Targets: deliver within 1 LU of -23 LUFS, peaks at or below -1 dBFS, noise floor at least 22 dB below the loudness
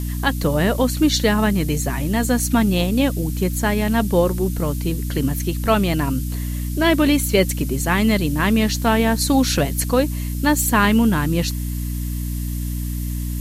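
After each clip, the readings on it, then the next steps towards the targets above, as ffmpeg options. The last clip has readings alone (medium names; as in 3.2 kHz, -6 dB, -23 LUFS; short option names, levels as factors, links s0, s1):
hum 60 Hz; highest harmonic 300 Hz; hum level -22 dBFS; noise floor -25 dBFS; noise floor target -42 dBFS; loudness -19.5 LUFS; peak level -4.5 dBFS; loudness target -23.0 LUFS
-> -af "bandreject=f=60:t=h:w=6,bandreject=f=120:t=h:w=6,bandreject=f=180:t=h:w=6,bandreject=f=240:t=h:w=6,bandreject=f=300:t=h:w=6"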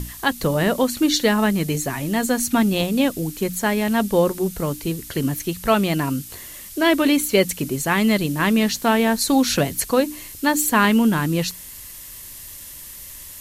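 hum not found; noise floor -38 dBFS; noise floor target -42 dBFS
-> -af "afftdn=nr=6:nf=-38"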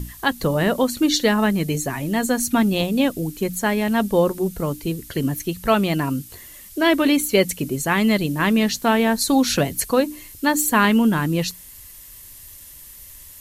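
noise floor -42 dBFS; loudness -20.0 LUFS; peak level -5.0 dBFS; loudness target -23.0 LUFS
-> -af "volume=0.708"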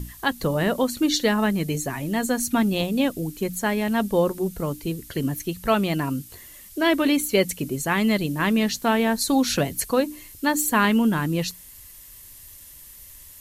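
loudness -23.0 LUFS; peak level -8.0 dBFS; noise floor -45 dBFS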